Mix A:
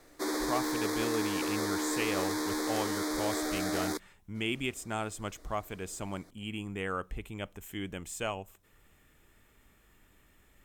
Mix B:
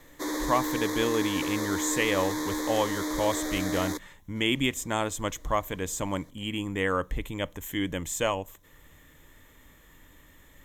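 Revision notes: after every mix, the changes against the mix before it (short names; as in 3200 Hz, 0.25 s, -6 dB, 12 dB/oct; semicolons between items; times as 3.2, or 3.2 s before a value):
speech +7.5 dB; master: add ripple EQ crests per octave 1.1, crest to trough 7 dB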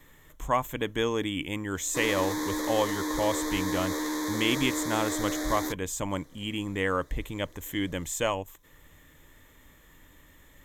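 background: entry +1.75 s; reverb: off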